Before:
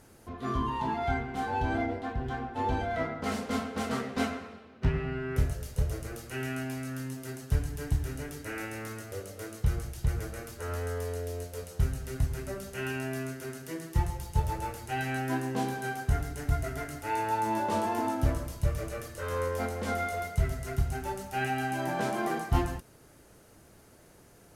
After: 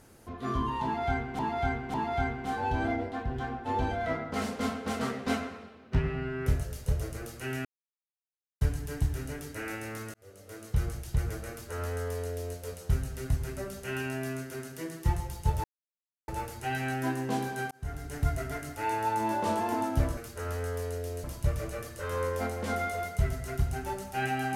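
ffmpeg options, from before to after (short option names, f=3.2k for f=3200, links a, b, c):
-filter_complex "[0:a]asplit=10[a][b][c][d][e][f][g][h][i][j];[a]atrim=end=1.392[k];[b]atrim=start=0.838:end=1.392[l];[c]atrim=start=0.838:end=6.55,asetpts=PTS-STARTPTS,afade=t=out:st=5.708:d=0.004:c=hsin[m];[d]atrim=start=6.55:end=7.51,asetpts=PTS-STARTPTS,volume=0[n];[e]atrim=start=7.51:end=9.04,asetpts=PTS-STARTPTS,afade=t=in:d=0.004:c=hsin,afade=t=out:st=1.526:d=0.004:c=hsin[o];[f]atrim=start=9.04:end=14.54,asetpts=PTS-STARTPTS,afade=t=in:d=0.68,afade=t=out:st=5.496:d=0.004:c=hsin,apad=pad_dur=0.64[p];[g]atrim=start=14.54:end=15.97,asetpts=PTS-STARTPTS,afade=t=in:d=0.004:c=hsin,afade=t=out:st=1.426:d=0.004:c=hsin[q];[h]atrim=start=15.97:end=18.432,asetpts=PTS-STARTPTS,afade=t=in:d=0.47[r];[i]atrim=start=10.398:end=11.472[s];[j]atrim=start=18.428[t];[k][l]acrossfade=d=0.004:c1=hsin:c2=hsin[u];[m][n][o][p][q][r]concat=n=6:v=0:a=1[v];[u][v]acrossfade=d=0.004:c1=hsin:c2=hsin[w];[w][s]acrossfade=d=0.004:c1=hsin:c2=hsin[x];[x][t]acrossfade=d=0.004:c1=hsin:c2=hsin"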